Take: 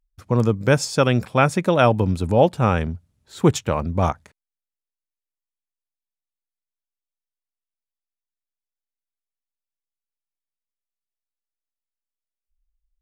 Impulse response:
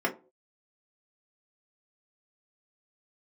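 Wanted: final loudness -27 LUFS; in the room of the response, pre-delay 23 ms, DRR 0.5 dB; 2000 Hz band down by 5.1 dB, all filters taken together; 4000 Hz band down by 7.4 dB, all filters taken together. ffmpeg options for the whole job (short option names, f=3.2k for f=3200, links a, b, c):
-filter_complex "[0:a]equalizer=f=2k:t=o:g=-5.5,equalizer=f=4k:t=o:g=-8.5,asplit=2[a][b];[1:a]atrim=start_sample=2205,adelay=23[c];[b][c]afir=irnorm=-1:irlink=0,volume=-11dB[d];[a][d]amix=inputs=2:normalize=0,volume=-9.5dB"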